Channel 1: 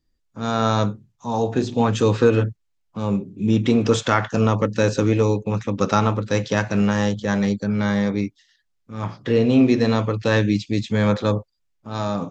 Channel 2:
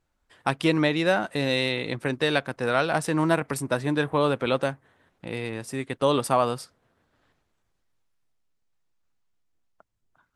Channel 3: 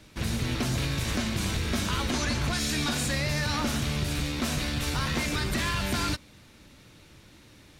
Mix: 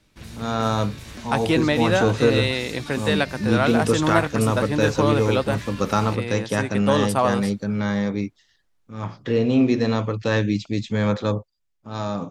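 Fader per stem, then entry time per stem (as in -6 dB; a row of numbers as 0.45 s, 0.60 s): -2.5 dB, +1.5 dB, -9.5 dB; 0.00 s, 0.85 s, 0.00 s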